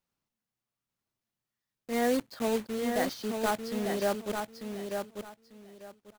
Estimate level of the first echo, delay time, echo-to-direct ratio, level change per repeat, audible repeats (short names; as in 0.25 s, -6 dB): -5.5 dB, 0.894 s, -5.5 dB, -13.5 dB, 3